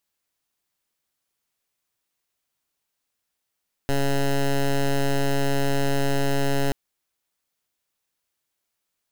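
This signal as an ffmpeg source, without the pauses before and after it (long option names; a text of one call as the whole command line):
ffmpeg -f lavfi -i "aevalsrc='0.0891*(2*lt(mod(139*t,1),0.12)-1)':duration=2.83:sample_rate=44100" out.wav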